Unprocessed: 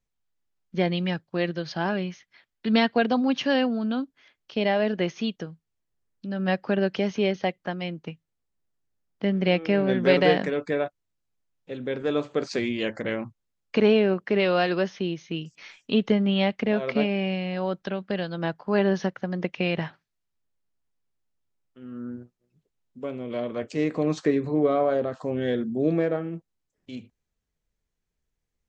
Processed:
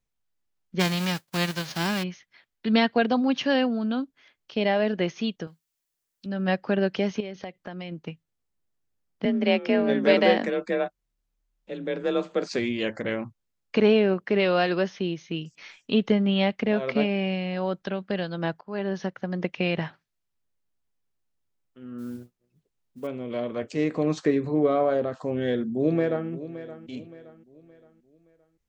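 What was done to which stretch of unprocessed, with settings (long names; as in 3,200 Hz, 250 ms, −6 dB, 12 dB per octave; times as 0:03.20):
0:00.79–0:02.02: spectral envelope flattened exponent 0.3
0:05.47–0:06.26: spectral tilt +3.5 dB per octave
0:07.20–0:07.92: downward compressor, threshold −32 dBFS
0:09.25–0:12.52: frequency shifter +35 Hz
0:18.61–0:19.36: fade in linear, from −14.5 dB
0:21.98–0:23.07: noise that follows the level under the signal 25 dB
0:25.23–0:26.29: delay throw 570 ms, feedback 40%, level −14 dB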